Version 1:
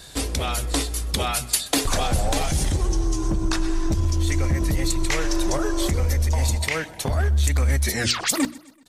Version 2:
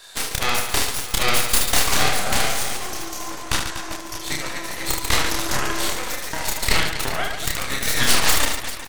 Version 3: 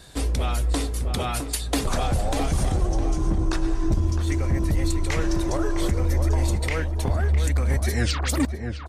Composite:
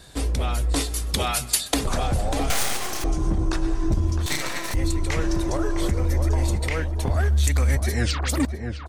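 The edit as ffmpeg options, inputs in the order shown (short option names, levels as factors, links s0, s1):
-filter_complex "[0:a]asplit=2[s0][s1];[1:a]asplit=2[s2][s3];[2:a]asplit=5[s4][s5][s6][s7][s8];[s4]atrim=end=0.762[s9];[s0]atrim=start=0.758:end=1.742[s10];[s5]atrim=start=1.738:end=2.502[s11];[s2]atrim=start=2.498:end=3.042[s12];[s6]atrim=start=3.038:end=4.262[s13];[s3]atrim=start=4.258:end=4.742[s14];[s7]atrim=start=4.738:end=7.162[s15];[s1]atrim=start=7.158:end=7.752[s16];[s8]atrim=start=7.748[s17];[s9][s10]acrossfade=d=0.004:c1=hsin:c2=hsin[s18];[s18][s11]acrossfade=d=0.004:c1=hsin:c2=hsin[s19];[s19][s12]acrossfade=d=0.004:c1=hsin:c2=hsin[s20];[s20][s13]acrossfade=d=0.004:c1=hsin:c2=hsin[s21];[s21][s14]acrossfade=d=0.004:c1=hsin:c2=hsin[s22];[s22][s15]acrossfade=d=0.004:c1=hsin:c2=hsin[s23];[s23][s16]acrossfade=d=0.004:c1=hsin:c2=hsin[s24];[s24][s17]acrossfade=d=0.004:c1=hsin:c2=hsin"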